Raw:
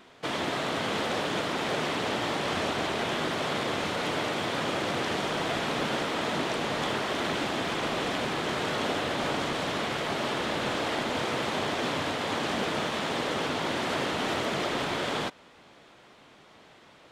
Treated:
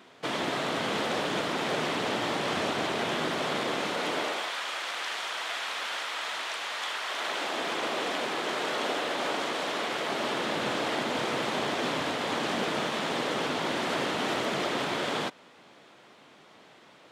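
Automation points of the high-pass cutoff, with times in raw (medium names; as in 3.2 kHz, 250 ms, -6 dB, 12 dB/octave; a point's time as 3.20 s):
3.17 s 120 Hz
4.20 s 260 Hz
4.55 s 1.1 kHz
7.00 s 1.1 kHz
7.68 s 320 Hz
9.81 s 320 Hz
10.62 s 140 Hz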